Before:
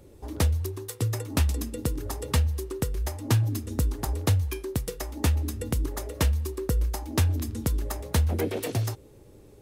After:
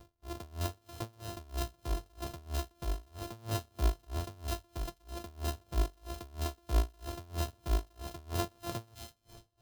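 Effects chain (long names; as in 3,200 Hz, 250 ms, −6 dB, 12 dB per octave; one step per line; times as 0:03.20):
samples sorted by size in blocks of 128 samples
graphic EQ with 10 bands 250 Hz −8 dB, 2,000 Hz −9 dB, 8,000 Hz −4 dB
delay with a high-pass on its return 208 ms, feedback 45%, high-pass 2,500 Hz, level −7 dB
convolution reverb RT60 3.5 s, pre-delay 93 ms, DRR 19.5 dB
tremolo with a sine in dB 3.1 Hz, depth 32 dB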